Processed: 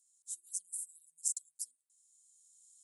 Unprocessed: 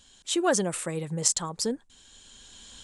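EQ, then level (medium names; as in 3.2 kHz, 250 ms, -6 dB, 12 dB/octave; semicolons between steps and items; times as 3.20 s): inverse Chebyshev high-pass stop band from 2.1 kHz, stop band 80 dB; distance through air 56 m; +10.5 dB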